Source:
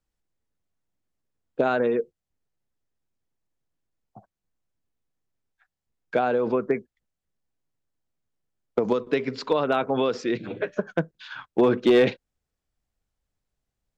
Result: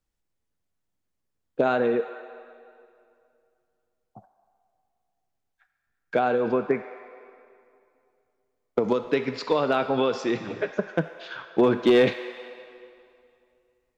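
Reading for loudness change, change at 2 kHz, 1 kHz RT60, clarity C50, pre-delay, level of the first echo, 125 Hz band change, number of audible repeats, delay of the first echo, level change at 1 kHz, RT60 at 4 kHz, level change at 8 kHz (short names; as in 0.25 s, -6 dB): 0.0 dB, +0.5 dB, 2.5 s, 9.0 dB, 4 ms, none, 0.0 dB, none, none, +0.5 dB, 2.0 s, n/a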